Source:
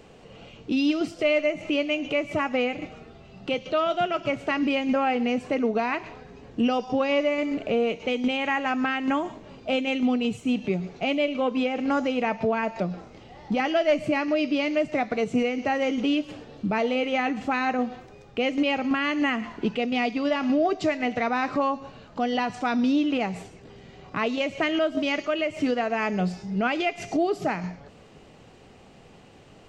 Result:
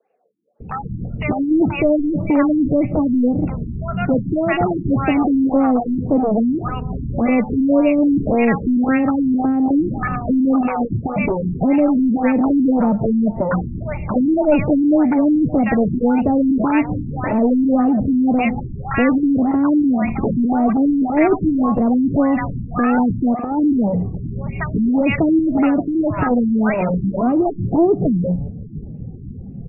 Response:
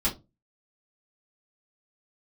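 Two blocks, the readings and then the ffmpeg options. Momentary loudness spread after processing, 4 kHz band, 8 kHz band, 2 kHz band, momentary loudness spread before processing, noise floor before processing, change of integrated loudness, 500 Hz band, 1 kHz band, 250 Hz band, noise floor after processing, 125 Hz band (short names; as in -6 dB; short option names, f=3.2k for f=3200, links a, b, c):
9 LU, under -10 dB, n/a, +0.5 dB, 8 LU, -51 dBFS, +8.5 dB, +5.0 dB, +4.5 dB, +11.5 dB, -31 dBFS, +16.0 dB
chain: -filter_complex "[0:a]afftdn=nr=26:nf=-44,acrossover=split=220|1400[a][b][c];[a]aeval=exprs='0.0841*sin(PI/2*7.08*val(0)/0.0841)':c=same[d];[d][b][c]amix=inputs=3:normalize=0,acrossover=split=890[e][f];[e]adelay=600[g];[g][f]amix=inputs=2:normalize=0,afftfilt=real='re*lt(b*sr/1024,350*pow(2900/350,0.5+0.5*sin(2*PI*1.8*pts/sr)))':imag='im*lt(b*sr/1024,350*pow(2900/350,0.5+0.5*sin(2*PI*1.8*pts/sr)))':win_size=1024:overlap=0.75,volume=6.5dB"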